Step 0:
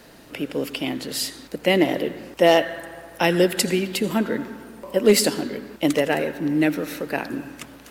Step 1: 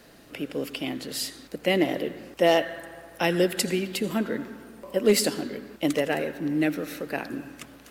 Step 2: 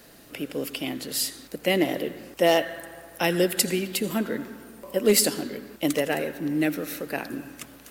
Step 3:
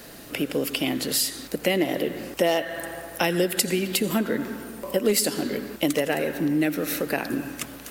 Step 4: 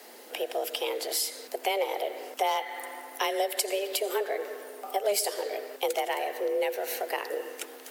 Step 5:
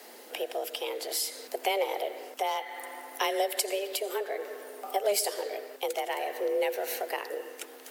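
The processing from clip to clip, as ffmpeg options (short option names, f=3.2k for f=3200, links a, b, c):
-af "bandreject=f=920:w=13,volume=-4.5dB"
-af "highshelf=f=7.7k:g=10"
-af "acompressor=threshold=-29dB:ratio=3,volume=7.5dB"
-af "afreqshift=200,volume=-5.5dB"
-af "tremolo=f=0.6:d=0.32"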